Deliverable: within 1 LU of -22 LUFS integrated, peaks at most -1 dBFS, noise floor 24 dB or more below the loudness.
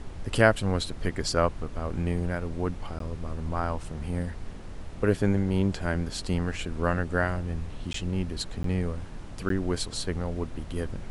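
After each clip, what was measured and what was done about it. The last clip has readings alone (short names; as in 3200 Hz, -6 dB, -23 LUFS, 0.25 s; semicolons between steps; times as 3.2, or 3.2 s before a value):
dropouts 4; longest dropout 13 ms; noise floor -40 dBFS; noise floor target -54 dBFS; loudness -29.5 LUFS; peak -6.0 dBFS; loudness target -22.0 LUFS
-> interpolate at 2.99/7.93/8.63/9.49, 13 ms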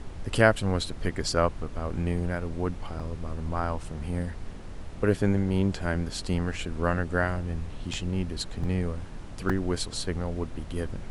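dropouts 0; noise floor -40 dBFS; noise floor target -54 dBFS
-> noise print and reduce 14 dB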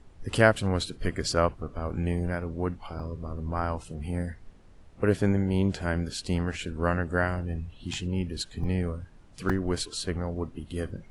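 noise floor -52 dBFS; noise floor target -54 dBFS
-> noise print and reduce 6 dB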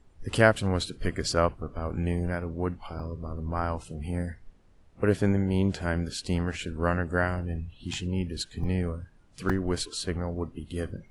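noise floor -57 dBFS; loudness -29.5 LUFS; peak -6.0 dBFS; loudness target -22.0 LUFS
-> gain +7.5 dB; limiter -1 dBFS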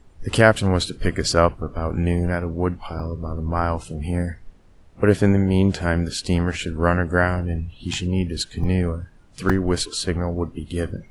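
loudness -22.5 LUFS; peak -1.0 dBFS; noise floor -50 dBFS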